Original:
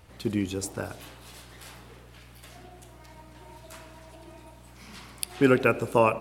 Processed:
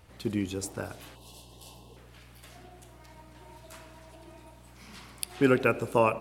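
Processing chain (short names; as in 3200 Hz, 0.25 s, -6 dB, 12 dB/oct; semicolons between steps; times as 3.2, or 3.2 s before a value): spectral gain 1.16–1.97, 1100–2600 Hz -21 dB; gain -2.5 dB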